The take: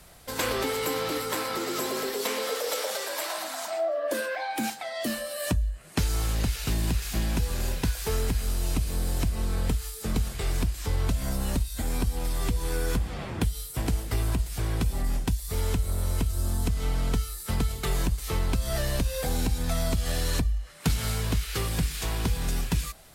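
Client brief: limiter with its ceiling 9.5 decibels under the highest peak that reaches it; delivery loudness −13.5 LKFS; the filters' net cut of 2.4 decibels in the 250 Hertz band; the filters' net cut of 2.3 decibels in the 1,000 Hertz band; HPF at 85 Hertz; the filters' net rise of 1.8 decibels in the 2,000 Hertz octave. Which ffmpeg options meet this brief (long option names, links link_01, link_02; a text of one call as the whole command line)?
ffmpeg -i in.wav -af "highpass=85,equalizer=frequency=250:width_type=o:gain=-3,equalizer=frequency=1000:width_type=o:gain=-4,equalizer=frequency=2000:width_type=o:gain=3.5,volume=20dB,alimiter=limit=-3dB:level=0:latency=1" out.wav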